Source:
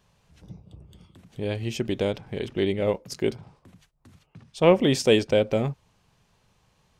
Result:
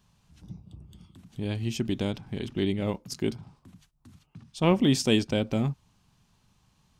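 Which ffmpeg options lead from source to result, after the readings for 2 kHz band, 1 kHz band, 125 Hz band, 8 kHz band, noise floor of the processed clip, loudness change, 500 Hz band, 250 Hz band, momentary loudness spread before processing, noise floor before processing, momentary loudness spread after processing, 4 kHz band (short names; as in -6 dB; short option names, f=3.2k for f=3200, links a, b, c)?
-4.5 dB, -4.0 dB, +0.5 dB, -0.5 dB, -68 dBFS, -3.5 dB, -8.0 dB, 0.0 dB, 12 LU, -67 dBFS, 23 LU, -1.5 dB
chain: -af "equalizer=f=250:t=o:w=1:g=4,equalizer=f=500:t=o:w=1:g=-11,equalizer=f=2k:t=o:w=1:g=-5"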